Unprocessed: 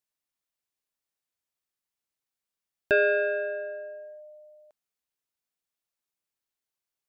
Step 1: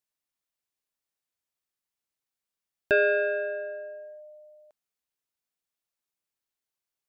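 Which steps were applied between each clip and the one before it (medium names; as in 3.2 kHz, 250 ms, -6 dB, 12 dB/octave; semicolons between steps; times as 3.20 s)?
no audible change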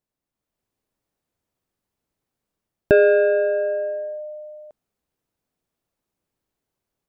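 in parallel at -2 dB: compression, threshold -30 dBFS, peak gain reduction 10.5 dB; on the sum: tilt shelf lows +9 dB, about 910 Hz; level rider gain up to 6 dB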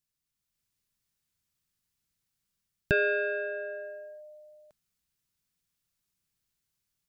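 FFT filter 180 Hz 0 dB, 260 Hz -9 dB, 650 Hz -13 dB, 1.4 kHz -1 dB, 4.9 kHz +7 dB; trim -3 dB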